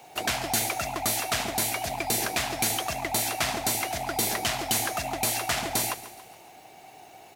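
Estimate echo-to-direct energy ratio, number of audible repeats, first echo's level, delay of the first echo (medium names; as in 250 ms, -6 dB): -13.5 dB, 4, -15.0 dB, 140 ms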